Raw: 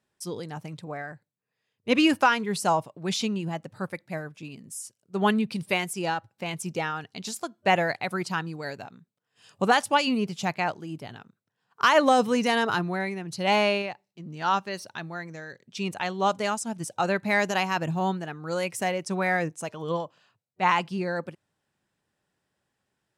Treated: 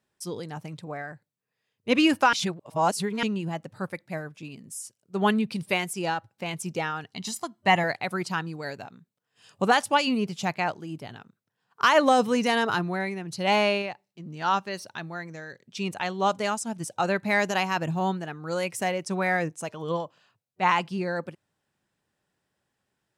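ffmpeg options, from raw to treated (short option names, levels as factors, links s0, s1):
-filter_complex "[0:a]asettb=1/sr,asplit=3[s0][s1][s2];[s0]atrim=end=7.154[s3];[s1]atrim=start=7.15:end=7.84,asetpts=PTS-STARTPTS,afade=t=in:d=0.004:c=qsin,afade=t=out:st=0.686:d=0.004:c=qsin,aecho=1:1:1:0.54,atrim=end_sample=30429[s4];[s2]atrim=start=7.836[s5];[s3][s4]acrossfade=d=0.004:c1=hsin:c2=qsin[s6];[s6][s5]acrossfade=d=0.004:c1=qsin:c2=hsin,asplit=3[s7][s8][s9];[s7]atrim=end=2.332[s10];[s8]atrim=start=2.328:end=3.232,asetpts=PTS-STARTPTS,areverse[s11];[s9]atrim=start=3.228[s12];[s10][s11]acrossfade=d=0.004:c1=hsin:c2=hsin[s13];[s13][s12]acrossfade=d=0.004:c1=hsin:c2=hsin"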